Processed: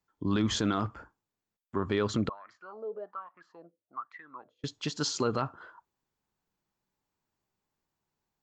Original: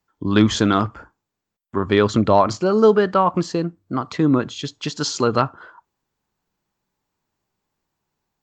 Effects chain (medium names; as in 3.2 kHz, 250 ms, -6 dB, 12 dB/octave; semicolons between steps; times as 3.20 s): peak limiter -10 dBFS, peak gain reduction 7.5 dB; 2.29–4.64 s: wah-wah 1.2 Hz 500–1900 Hz, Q 9.9; trim -7.5 dB